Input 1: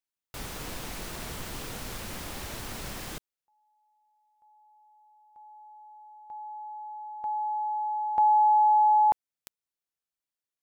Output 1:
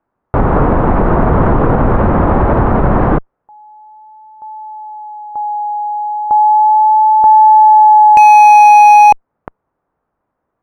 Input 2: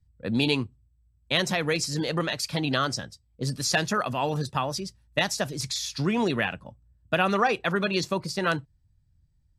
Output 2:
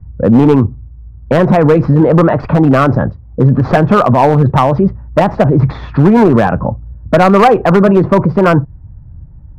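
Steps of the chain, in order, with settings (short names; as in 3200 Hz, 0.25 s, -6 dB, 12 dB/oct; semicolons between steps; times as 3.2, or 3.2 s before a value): wow and flutter 0.41 Hz 30 cents; added harmonics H 2 -27 dB, 3 -16 dB, 6 -44 dB, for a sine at -7.5 dBFS; LPF 1200 Hz 24 dB/oct; in parallel at -0.5 dB: compressor 12:1, threshold -36 dBFS; on the sum: hard clip -24 dBFS; maximiser +33 dB; gain -1 dB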